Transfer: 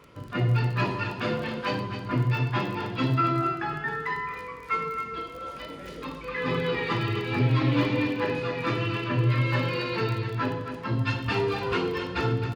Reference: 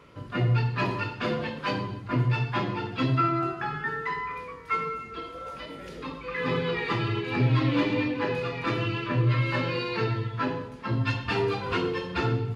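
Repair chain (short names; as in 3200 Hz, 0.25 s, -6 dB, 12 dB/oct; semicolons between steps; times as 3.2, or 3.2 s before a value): de-click; inverse comb 0.265 s -9 dB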